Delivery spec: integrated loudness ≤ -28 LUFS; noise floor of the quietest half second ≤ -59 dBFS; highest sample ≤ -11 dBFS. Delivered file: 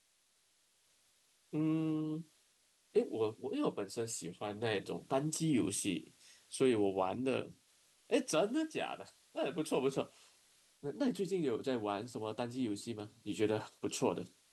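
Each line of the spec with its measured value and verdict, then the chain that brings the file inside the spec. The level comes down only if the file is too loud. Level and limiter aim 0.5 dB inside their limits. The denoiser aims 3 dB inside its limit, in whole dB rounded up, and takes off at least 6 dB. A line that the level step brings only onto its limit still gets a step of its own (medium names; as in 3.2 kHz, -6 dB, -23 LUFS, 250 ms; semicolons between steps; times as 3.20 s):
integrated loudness -37.0 LUFS: pass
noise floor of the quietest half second -74 dBFS: pass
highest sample -19.0 dBFS: pass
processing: none needed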